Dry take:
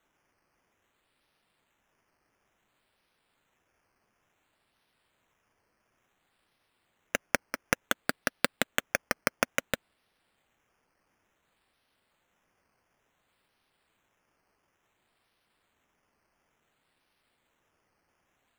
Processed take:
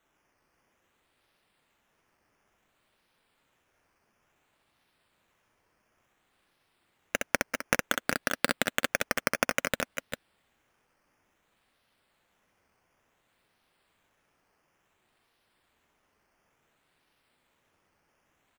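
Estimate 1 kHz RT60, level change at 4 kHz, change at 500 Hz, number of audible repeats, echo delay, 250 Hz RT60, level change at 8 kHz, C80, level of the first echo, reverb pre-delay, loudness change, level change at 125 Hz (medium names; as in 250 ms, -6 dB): no reverb, +2.0 dB, +2.0 dB, 2, 64 ms, no reverb, +2.0 dB, no reverb, -4.5 dB, no reverb, +1.5 dB, +2.0 dB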